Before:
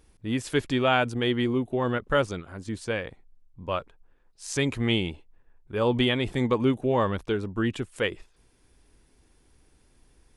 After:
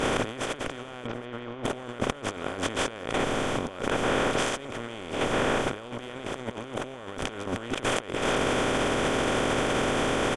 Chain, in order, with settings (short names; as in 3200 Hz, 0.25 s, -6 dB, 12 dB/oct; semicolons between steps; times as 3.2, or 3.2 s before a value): per-bin compression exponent 0.2; negative-ratio compressor -24 dBFS, ratio -0.5; 1.07–1.64 air absorption 220 m; on a send: echo 0.724 s -23.5 dB; on the sum: gain -5 dB